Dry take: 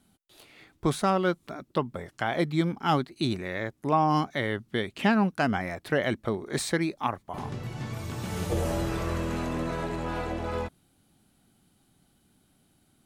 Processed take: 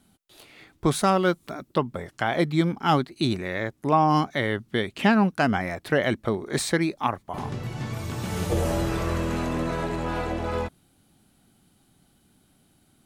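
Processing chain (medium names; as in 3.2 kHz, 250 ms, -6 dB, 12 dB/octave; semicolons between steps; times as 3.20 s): 0.94–1.73 s: treble shelf 4.9 kHz -> 9.5 kHz +6.5 dB; trim +3.5 dB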